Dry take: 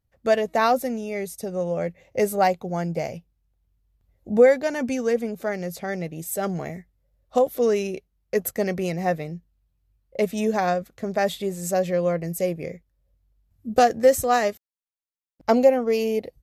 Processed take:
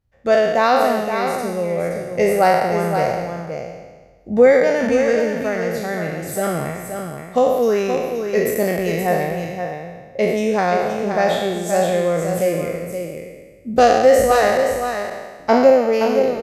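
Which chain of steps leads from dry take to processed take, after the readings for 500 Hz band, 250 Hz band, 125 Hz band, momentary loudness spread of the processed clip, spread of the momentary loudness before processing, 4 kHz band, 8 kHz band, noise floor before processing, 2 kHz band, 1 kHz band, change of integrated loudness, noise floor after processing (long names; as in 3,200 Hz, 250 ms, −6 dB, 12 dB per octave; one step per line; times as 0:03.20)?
+6.5 dB, +5.0 dB, +5.0 dB, 15 LU, 13 LU, +6.5 dB, +3.5 dB, −81 dBFS, +7.5 dB, +6.5 dB, +5.5 dB, −43 dBFS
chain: peak hold with a decay on every bin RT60 1.37 s
high-shelf EQ 7,700 Hz −11 dB
single-tap delay 523 ms −7 dB
level +2.5 dB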